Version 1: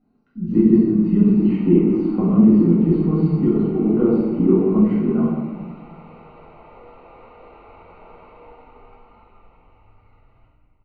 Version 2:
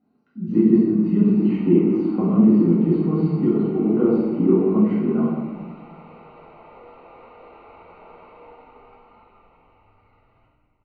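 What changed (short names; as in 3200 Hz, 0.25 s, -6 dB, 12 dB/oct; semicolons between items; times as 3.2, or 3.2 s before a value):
speech: add HPF 61 Hz; master: add low shelf 97 Hz -11.5 dB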